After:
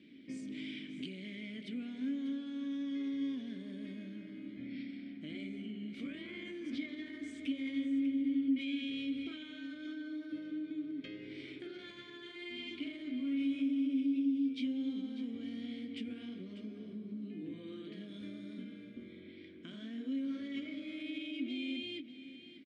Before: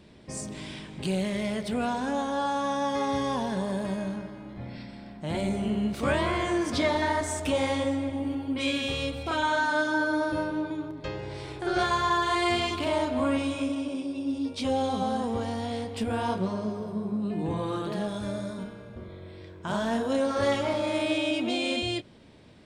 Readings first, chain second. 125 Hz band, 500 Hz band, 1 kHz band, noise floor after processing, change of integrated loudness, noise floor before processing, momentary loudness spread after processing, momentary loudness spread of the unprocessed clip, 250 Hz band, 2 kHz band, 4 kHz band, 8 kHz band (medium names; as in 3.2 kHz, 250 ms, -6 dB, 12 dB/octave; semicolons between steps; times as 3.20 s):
under -15 dB, -23.0 dB, under -35 dB, -52 dBFS, -11.0 dB, -45 dBFS, 14 LU, 13 LU, -6.5 dB, -16.5 dB, -13.0 dB, under -25 dB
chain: bass shelf 93 Hz -9.5 dB; peak limiter -22.5 dBFS, peak gain reduction 8.5 dB; compression, threshold -36 dBFS, peak gain reduction 9.5 dB; vowel filter i; on a send: delay 594 ms -13 dB; on the sum: trim +7.5 dB